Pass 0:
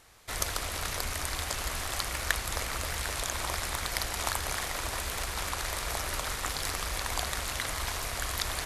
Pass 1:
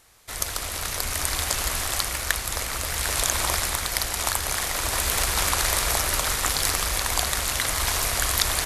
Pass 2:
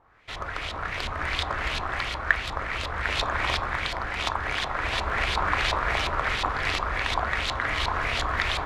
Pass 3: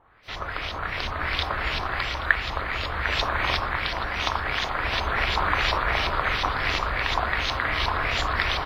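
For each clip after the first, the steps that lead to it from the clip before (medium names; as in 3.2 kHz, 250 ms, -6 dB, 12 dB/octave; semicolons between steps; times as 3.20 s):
treble shelf 5.5 kHz +6.5 dB; level rider gain up to 10.5 dB; trim -1 dB
LFO low-pass saw up 2.8 Hz 920–3800 Hz; on a send at -10 dB: reverberation RT60 0.35 s, pre-delay 3 ms; on the sum: trim -2 dB
delay 828 ms -14.5 dB; trim +1.5 dB; WMA 32 kbps 32 kHz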